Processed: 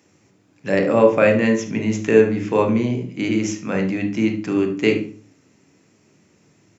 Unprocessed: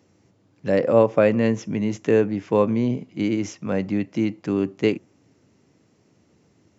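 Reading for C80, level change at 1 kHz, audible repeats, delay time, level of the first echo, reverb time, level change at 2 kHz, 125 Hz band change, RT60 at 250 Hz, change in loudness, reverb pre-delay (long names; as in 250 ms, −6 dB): 15.5 dB, +3.5 dB, 1, 74 ms, −15.0 dB, 0.40 s, +7.5 dB, +2.0 dB, 0.50 s, +3.0 dB, 21 ms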